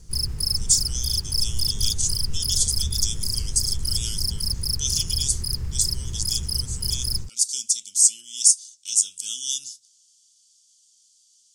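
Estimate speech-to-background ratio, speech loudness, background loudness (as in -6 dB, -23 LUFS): 2.0 dB, -23.5 LUFS, -25.5 LUFS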